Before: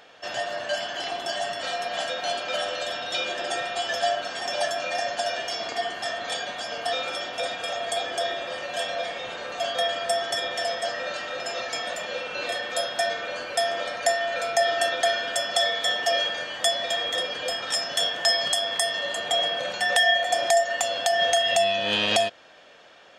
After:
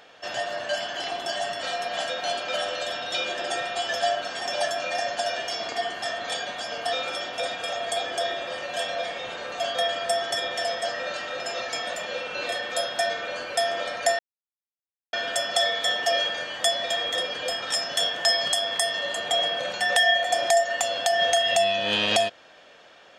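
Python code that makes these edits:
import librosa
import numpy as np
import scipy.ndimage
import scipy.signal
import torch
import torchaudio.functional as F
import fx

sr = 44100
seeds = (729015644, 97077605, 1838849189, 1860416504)

y = fx.edit(x, sr, fx.silence(start_s=14.19, length_s=0.94), tone=tone)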